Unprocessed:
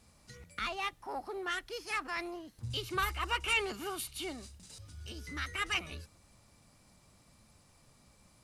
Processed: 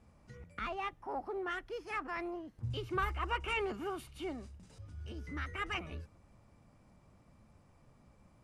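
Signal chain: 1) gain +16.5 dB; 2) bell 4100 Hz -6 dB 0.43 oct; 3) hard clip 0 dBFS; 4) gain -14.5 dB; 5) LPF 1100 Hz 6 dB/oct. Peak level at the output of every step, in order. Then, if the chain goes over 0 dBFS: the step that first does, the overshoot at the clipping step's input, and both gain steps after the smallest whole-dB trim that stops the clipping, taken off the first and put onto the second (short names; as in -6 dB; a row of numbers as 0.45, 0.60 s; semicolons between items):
-2.5, -3.5, -3.5, -18.0, -22.0 dBFS; no overload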